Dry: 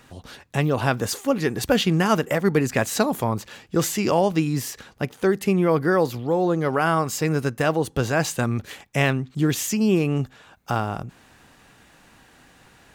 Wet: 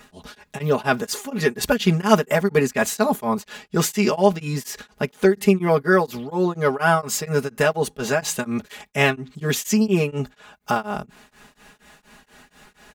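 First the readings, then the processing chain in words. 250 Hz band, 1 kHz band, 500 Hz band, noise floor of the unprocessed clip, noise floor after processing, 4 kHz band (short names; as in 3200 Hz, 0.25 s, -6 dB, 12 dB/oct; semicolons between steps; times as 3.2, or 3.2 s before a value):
0.0 dB, +1.5 dB, +2.0 dB, -54 dBFS, -62 dBFS, +1.0 dB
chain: bell 120 Hz -3 dB 2.3 oct; comb 4.8 ms, depth 93%; beating tremolo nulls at 4.2 Hz; gain +2.5 dB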